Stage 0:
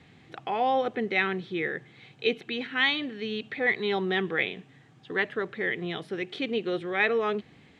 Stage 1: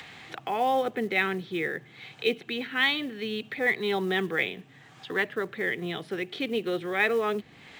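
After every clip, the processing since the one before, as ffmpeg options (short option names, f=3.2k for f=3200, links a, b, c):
-filter_complex "[0:a]acrossover=split=140|620[a][b][c];[c]acompressor=mode=upward:threshold=-34dB:ratio=2.5[d];[a][b][d]amix=inputs=3:normalize=0,acrusher=bits=7:mode=log:mix=0:aa=0.000001"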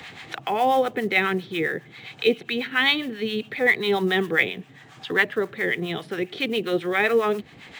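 -filter_complex "[0:a]acrossover=split=730[a][b];[a]aeval=exprs='val(0)*(1-0.7/2+0.7/2*cos(2*PI*7.4*n/s))':c=same[c];[b]aeval=exprs='val(0)*(1-0.7/2-0.7/2*cos(2*PI*7.4*n/s))':c=same[d];[c][d]amix=inputs=2:normalize=0,volume=8.5dB"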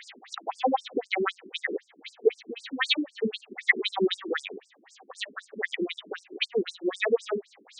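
-af "bass=f=250:g=6,treble=f=4k:g=4,afftfilt=real='re*between(b*sr/1024,290*pow(6800/290,0.5+0.5*sin(2*PI*3.9*pts/sr))/1.41,290*pow(6800/290,0.5+0.5*sin(2*PI*3.9*pts/sr))*1.41)':imag='im*between(b*sr/1024,290*pow(6800/290,0.5+0.5*sin(2*PI*3.9*pts/sr))/1.41,290*pow(6800/290,0.5+0.5*sin(2*PI*3.9*pts/sr))*1.41)':win_size=1024:overlap=0.75,volume=2dB"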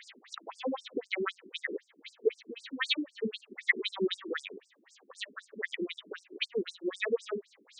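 -af "equalizer=f=760:t=o:w=0.37:g=-14,volume=-5dB"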